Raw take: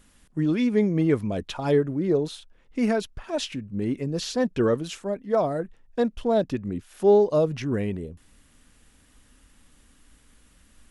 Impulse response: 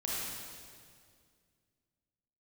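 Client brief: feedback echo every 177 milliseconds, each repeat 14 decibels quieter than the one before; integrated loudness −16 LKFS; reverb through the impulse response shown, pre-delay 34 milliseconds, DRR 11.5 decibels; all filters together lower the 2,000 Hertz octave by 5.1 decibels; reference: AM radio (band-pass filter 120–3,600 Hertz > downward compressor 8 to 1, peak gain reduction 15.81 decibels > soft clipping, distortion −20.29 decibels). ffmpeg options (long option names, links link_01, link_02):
-filter_complex "[0:a]equalizer=frequency=2000:width_type=o:gain=-6,aecho=1:1:177|354:0.2|0.0399,asplit=2[link_01][link_02];[1:a]atrim=start_sample=2205,adelay=34[link_03];[link_02][link_03]afir=irnorm=-1:irlink=0,volume=-16dB[link_04];[link_01][link_04]amix=inputs=2:normalize=0,highpass=120,lowpass=3600,acompressor=threshold=-29dB:ratio=8,asoftclip=threshold=-25dB,volume=19.5dB"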